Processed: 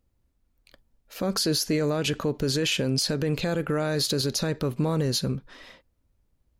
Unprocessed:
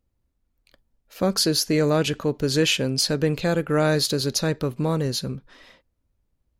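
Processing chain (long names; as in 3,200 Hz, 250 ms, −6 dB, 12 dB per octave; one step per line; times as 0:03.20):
brickwall limiter −18.5 dBFS, peak gain reduction 10.5 dB
level +2.5 dB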